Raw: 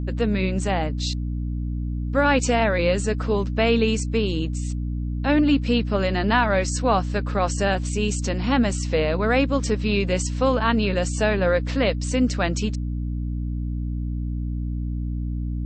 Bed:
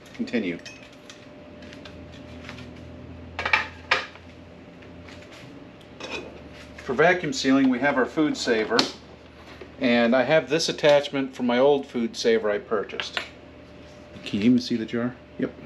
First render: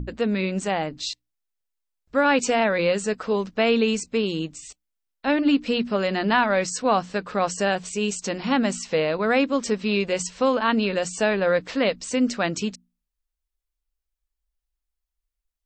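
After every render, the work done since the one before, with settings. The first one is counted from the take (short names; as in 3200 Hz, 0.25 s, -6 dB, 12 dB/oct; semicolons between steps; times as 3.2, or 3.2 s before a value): notches 60/120/180/240/300 Hz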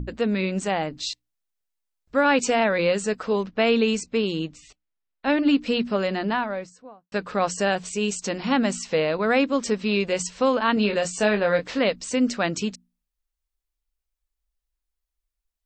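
3.43–5.26 low-pass opened by the level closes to 3000 Hz, open at -16 dBFS; 5.84–7.12 studio fade out; 10.74–11.79 doubler 24 ms -6.5 dB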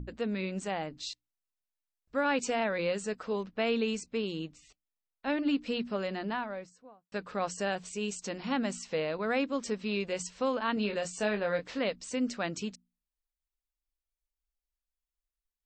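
gain -9.5 dB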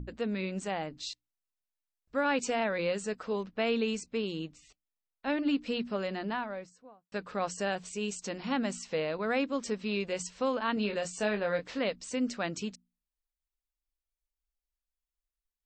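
nothing audible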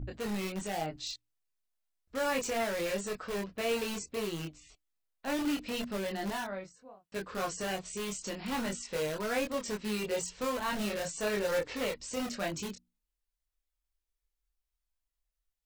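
in parallel at -5 dB: wrapped overs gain 29 dB; on the sum: chorus voices 6, 0.18 Hz, delay 25 ms, depth 1.6 ms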